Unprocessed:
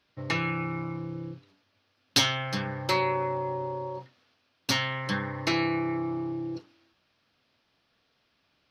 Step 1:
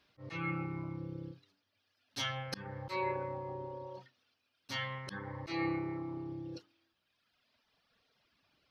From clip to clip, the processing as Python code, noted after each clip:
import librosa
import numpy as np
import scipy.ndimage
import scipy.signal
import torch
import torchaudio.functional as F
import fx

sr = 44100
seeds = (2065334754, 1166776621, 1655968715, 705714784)

y = fx.dereverb_blind(x, sr, rt60_s=1.7)
y = fx.auto_swell(y, sr, attack_ms=230.0)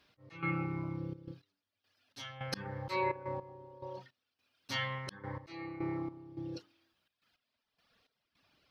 y = fx.step_gate(x, sr, bpm=106, pattern='x..xxxxx.x...x', floor_db=-12.0, edge_ms=4.5)
y = y * librosa.db_to_amplitude(2.5)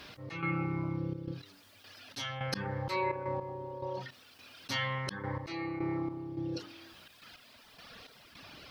y = fx.env_flatten(x, sr, amount_pct=50)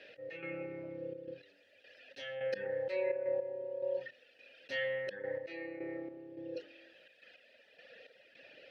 y = fx.vowel_filter(x, sr, vowel='e')
y = y * librosa.db_to_amplitude(7.5)